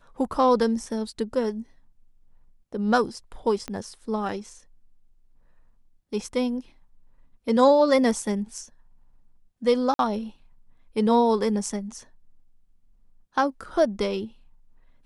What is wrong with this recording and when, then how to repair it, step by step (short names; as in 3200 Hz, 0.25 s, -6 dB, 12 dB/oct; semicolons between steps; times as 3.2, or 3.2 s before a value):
3.68 pop -18 dBFS
9.94–9.99 gap 52 ms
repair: de-click; interpolate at 9.94, 52 ms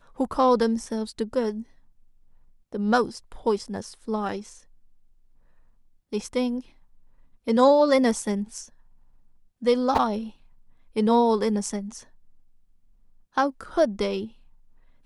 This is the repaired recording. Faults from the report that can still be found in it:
3.68 pop